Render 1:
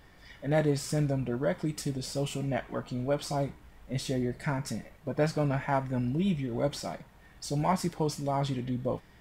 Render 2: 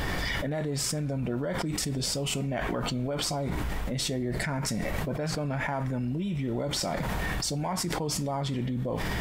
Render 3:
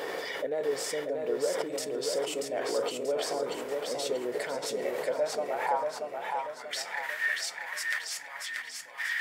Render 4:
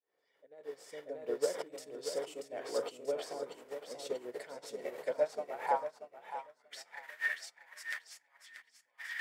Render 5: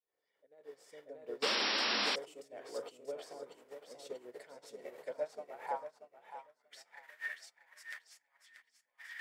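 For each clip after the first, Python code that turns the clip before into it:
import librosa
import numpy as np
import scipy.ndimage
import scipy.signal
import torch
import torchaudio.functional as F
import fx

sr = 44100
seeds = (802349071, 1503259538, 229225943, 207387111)

y1 = fx.env_flatten(x, sr, amount_pct=100)
y1 = F.gain(torch.from_numpy(y1), -7.5).numpy()
y2 = fx.filter_sweep_highpass(y1, sr, from_hz=460.0, to_hz=1800.0, start_s=4.91, end_s=6.72, q=5.1)
y2 = fx.echo_feedback(y2, sr, ms=635, feedback_pct=43, wet_db=-4)
y2 = F.gain(torch.from_numpy(y2), -6.0).numpy()
y3 = fx.fade_in_head(y2, sr, length_s=1.13)
y3 = fx.upward_expand(y3, sr, threshold_db=-44.0, expansion=2.5)
y4 = fx.spec_paint(y3, sr, seeds[0], shape='noise', start_s=1.42, length_s=0.74, low_hz=200.0, high_hz=5700.0, level_db=-26.0)
y4 = F.gain(torch.from_numpy(y4), -7.0).numpy()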